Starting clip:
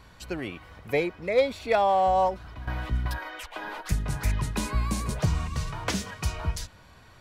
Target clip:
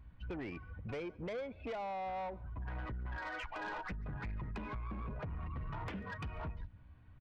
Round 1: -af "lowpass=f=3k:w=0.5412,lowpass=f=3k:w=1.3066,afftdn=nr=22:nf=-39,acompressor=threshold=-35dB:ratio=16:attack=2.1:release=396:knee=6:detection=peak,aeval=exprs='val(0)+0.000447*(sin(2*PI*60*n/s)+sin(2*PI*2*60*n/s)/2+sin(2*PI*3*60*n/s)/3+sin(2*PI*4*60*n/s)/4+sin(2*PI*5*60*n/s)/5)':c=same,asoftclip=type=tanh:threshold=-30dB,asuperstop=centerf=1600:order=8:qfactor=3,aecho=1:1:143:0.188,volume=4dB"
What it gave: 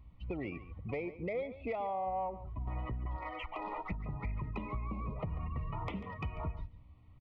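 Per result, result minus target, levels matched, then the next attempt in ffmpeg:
soft clip: distortion -15 dB; echo-to-direct +11 dB; 2000 Hz band -5.5 dB
-af "lowpass=f=3k:w=0.5412,lowpass=f=3k:w=1.3066,afftdn=nr=22:nf=-39,acompressor=threshold=-35dB:ratio=16:attack=2.1:release=396:knee=6:detection=peak,aeval=exprs='val(0)+0.000447*(sin(2*PI*60*n/s)+sin(2*PI*2*60*n/s)/2+sin(2*PI*3*60*n/s)/3+sin(2*PI*4*60*n/s)/4+sin(2*PI*5*60*n/s)/5)':c=same,asoftclip=type=tanh:threshold=-41dB,asuperstop=centerf=1600:order=8:qfactor=3,aecho=1:1:143:0.188,volume=4dB"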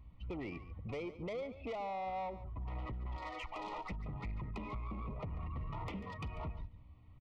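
echo-to-direct +11 dB; 2000 Hz band -5.0 dB
-af "lowpass=f=3k:w=0.5412,lowpass=f=3k:w=1.3066,afftdn=nr=22:nf=-39,acompressor=threshold=-35dB:ratio=16:attack=2.1:release=396:knee=6:detection=peak,aeval=exprs='val(0)+0.000447*(sin(2*PI*60*n/s)+sin(2*PI*2*60*n/s)/2+sin(2*PI*3*60*n/s)/3+sin(2*PI*4*60*n/s)/4+sin(2*PI*5*60*n/s)/5)':c=same,asoftclip=type=tanh:threshold=-41dB,asuperstop=centerf=1600:order=8:qfactor=3,aecho=1:1:143:0.0531,volume=4dB"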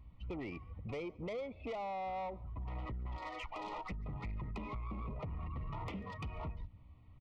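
2000 Hz band -5.0 dB
-af "lowpass=f=3k:w=0.5412,lowpass=f=3k:w=1.3066,afftdn=nr=22:nf=-39,acompressor=threshold=-35dB:ratio=16:attack=2.1:release=396:knee=6:detection=peak,aeval=exprs='val(0)+0.000447*(sin(2*PI*60*n/s)+sin(2*PI*2*60*n/s)/2+sin(2*PI*3*60*n/s)/3+sin(2*PI*4*60*n/s)/4+sin(2*PI*5*60*n/s)/5)':c=same,asoftclip=type=tanh:threshold=-41dB,aecho=1:1:143:0.0531,volume=4dB"

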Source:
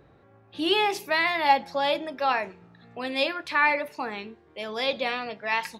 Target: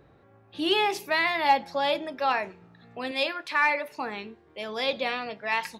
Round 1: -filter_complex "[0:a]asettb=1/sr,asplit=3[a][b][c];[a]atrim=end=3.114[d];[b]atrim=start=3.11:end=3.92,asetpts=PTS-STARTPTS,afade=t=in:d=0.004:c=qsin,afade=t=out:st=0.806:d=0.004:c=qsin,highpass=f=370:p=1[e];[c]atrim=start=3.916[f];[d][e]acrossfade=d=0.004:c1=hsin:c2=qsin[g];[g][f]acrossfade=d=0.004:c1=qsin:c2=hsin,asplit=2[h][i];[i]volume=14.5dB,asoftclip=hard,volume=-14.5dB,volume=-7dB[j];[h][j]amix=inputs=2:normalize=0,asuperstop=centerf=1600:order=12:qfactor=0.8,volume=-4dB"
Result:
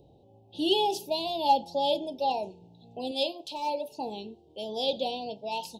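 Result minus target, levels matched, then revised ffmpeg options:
2000 Hz band -16.0 dB
-filter_complex "[0:a]asettb=1/sr,asplit=3[a][b][c];[a]atrim=end=3.114[d];[b]atrim=start=3.11:end=3.92,asetpts=PTS-STARTPTS,afade=t=in:d=0.004:c=qsin,afade=t=out:st=0.806:d=0.004:c=qsin,highpass=f=370:p=1[e];[c]atrim=start=3.916[f];[d][e]acrossfade=d=0.004:c1=hsin:c2=qsin[g];[g][f]acrossfade=d=0.004:c1=qsin:c2=hsin,asplit=2[h][i];[i]volume=14.5dB,asoftclip=hard,volume=-14.5dB,volume=-7dB[j];[h][j]amix=inputs=2:normalize=0,volume=-4dB"

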